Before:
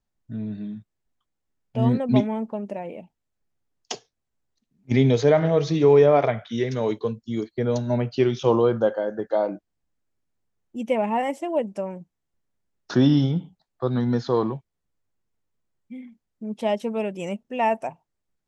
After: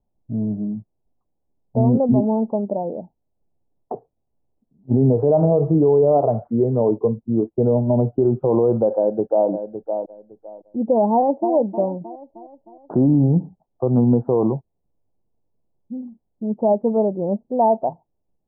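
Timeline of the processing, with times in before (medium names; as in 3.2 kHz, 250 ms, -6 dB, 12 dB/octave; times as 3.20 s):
8.95–9.49 s: echo throw 560 ms, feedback 20%, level -10.5 dB
11.11–11.53 s: echo throw 310 ms, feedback 55%, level -11.5 dB
whole clip: steep low-pass 850 Hz 36 dB/octave; bass shelf 390 Hz -2.5 dB; loudness maximiser +17 dB; trim -7.5 dB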